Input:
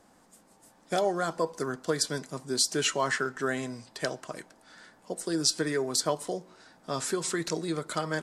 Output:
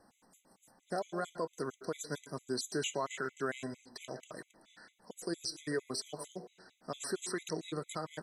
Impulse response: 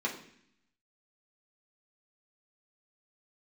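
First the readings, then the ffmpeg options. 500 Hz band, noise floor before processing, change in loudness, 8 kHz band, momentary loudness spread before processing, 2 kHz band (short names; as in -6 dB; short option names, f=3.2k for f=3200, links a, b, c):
-8.5 dB, -61 dBFS, -9.5 dB, -11.5 dB, 11 LU, -9.5 dB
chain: -filter_complex "[0:a]asplit=2[a][b];[1:a]atrim=start_sample=2205,adelay=112[c];[b][c]afir=irnorm=-1:irlink=0,volume=-22.5dB[d];[a][d]amix=inputs=2:normalize=0,alimiter=limit=-21dB:level=0:latency=1:release=105,afftfilt=real='re*gt(sin(2*PI*4.4*pts/sr)*(1-2*mod(floor(b*sr/1024/2000),2)),0)':imag='im*gt(sin(2*PI*4.4*pts/sr)*(1-2*mod(floor(b*sr/1024/2000),2)),0)':win_size=1024:overlap=0.75,volume=-4dB"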